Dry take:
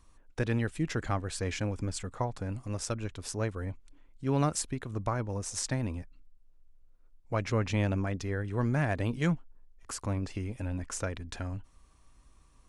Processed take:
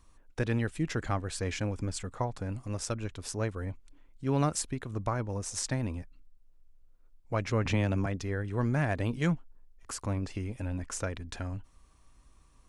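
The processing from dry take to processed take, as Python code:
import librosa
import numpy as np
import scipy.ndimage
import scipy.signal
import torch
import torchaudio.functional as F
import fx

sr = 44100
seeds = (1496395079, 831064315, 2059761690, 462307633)

y = fx.band_squash(x, sr, depth_pct=70, at=(7.65, 8.06))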